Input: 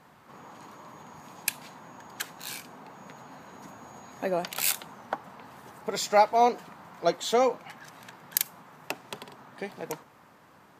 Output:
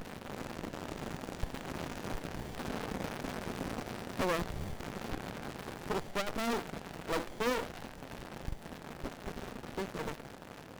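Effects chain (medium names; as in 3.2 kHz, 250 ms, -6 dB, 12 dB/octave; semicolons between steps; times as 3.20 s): Doppler pass-by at 2.54 s, 13 m/s, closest 16 m; bass shelf 76 Hz -10 dB; power-law waveshaper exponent 0.35; sliding maximum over 33 samples; trim -8 dB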